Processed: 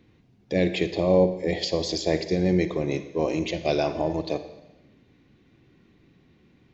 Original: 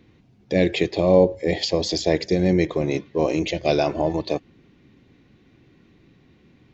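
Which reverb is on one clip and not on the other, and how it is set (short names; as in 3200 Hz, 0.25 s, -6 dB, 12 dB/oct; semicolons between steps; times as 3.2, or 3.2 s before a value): Schroeder reverb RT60 1 s, DRR 10.5 dB; gain -4 dB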